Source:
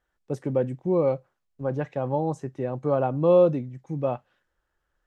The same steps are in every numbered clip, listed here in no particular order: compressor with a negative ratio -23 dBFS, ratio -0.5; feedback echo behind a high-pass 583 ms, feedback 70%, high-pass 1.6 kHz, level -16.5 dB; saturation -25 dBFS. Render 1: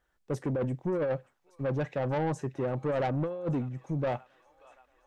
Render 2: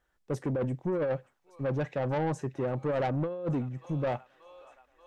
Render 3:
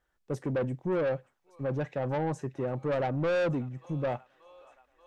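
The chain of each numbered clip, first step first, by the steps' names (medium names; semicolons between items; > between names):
compressor with a negative ratio > feedback echo behind a high-pass > saturation; feedback echo behind a high-pass > compressor with a negative ratio > saturation; feedback echo behind a high-pass > saturation > compressor with a negative ratio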